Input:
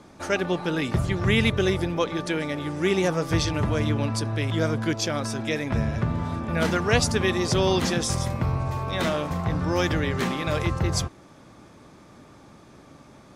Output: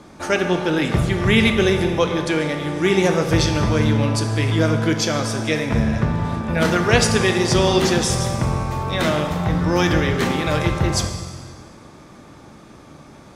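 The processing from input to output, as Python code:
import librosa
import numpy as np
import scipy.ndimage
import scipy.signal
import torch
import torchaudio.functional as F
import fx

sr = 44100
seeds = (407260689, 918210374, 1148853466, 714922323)

y = fx.rev_plate(x, sr, seeds[0], rt60_s=1.7, hf_ratio=0.95, predelay_ms=0, drr_db=5.0)
y = y * librosa.db_to_amplitude(5.0)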